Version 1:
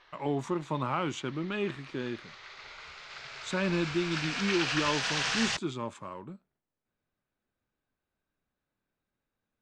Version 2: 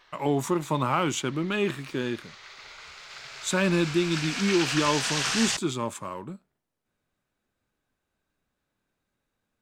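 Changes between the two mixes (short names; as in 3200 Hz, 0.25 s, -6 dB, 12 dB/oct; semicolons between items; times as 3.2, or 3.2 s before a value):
speech +5.5 dB; master: remove air absorption 100 m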